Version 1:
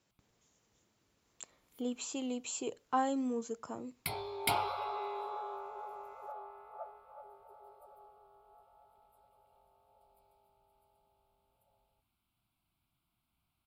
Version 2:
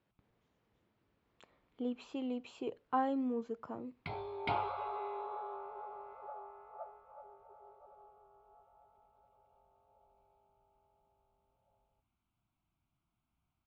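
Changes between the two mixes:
background: add air absorption 73 m; master: add air absorption 350 m

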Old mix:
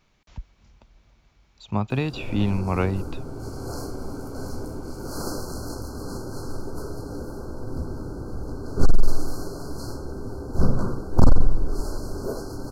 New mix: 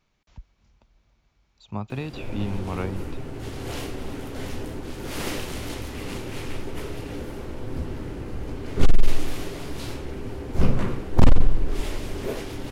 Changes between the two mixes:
speech -6.5 dB; background: remove brick-wall FIR band-stop 1600–4100 Hz

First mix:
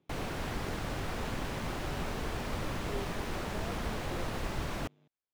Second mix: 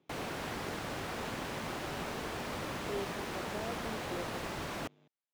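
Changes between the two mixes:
speech +3.5 dB; master: add HPF 210 Hz 6 dB/oct

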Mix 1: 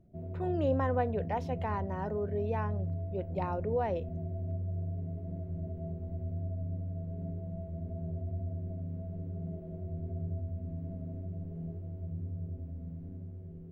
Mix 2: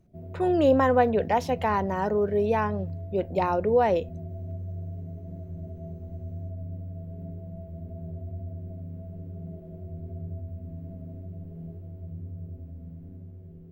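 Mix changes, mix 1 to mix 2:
speech +10.0 dB; master: add high shelf 4800 Hz +11.5 dB

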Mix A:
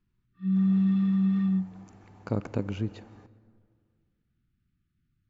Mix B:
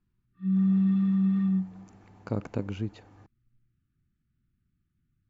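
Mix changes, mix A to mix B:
speech: send off; background: add high shelf 2500 Hz -7.5 dB

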